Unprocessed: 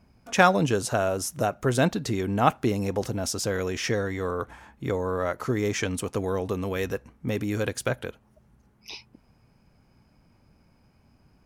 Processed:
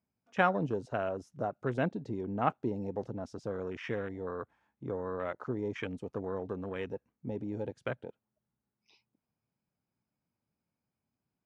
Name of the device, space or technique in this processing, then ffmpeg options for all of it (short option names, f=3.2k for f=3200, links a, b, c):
over-cleaned archive recording: -af "highpass=110,lowpass=5.1k,afwtdn=0.0251,volume=-8.5dB"